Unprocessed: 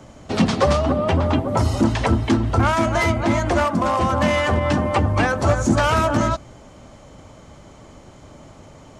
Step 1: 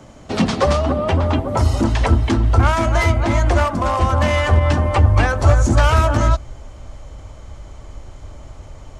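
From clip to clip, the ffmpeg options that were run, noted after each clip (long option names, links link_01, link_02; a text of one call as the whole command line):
ffmpeg -i in.wav -af "asubboost=boost=10:cutoff=59,volume=1dB" out.wav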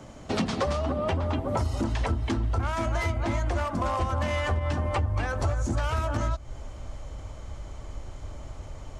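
ffmpeg -i in.wav -af "acompressor=threshold=-21dB:ratio=6,volume=-3dB" out.wav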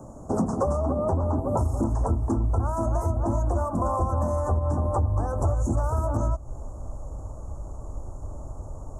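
ffmpeg -i in.wav -af "asuperstop=centerf=2900:order=8:qfactor=0.5,volume=3dB" out.wav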